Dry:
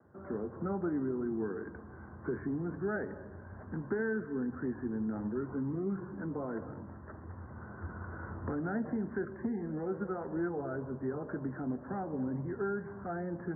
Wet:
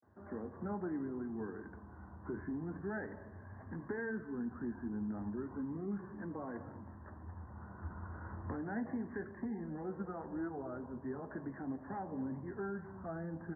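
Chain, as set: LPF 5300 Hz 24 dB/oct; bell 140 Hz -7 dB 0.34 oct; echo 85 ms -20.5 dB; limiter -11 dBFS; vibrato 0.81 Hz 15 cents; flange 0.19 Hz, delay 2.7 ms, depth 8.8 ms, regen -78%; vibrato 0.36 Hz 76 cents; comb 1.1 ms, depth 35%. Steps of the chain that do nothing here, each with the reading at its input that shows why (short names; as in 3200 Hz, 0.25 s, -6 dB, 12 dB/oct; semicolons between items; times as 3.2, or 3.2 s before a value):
LPF 5300 Hz: input band ends at 1700 Hz; limiter -11 dBFS: input peak -22.5 dBFS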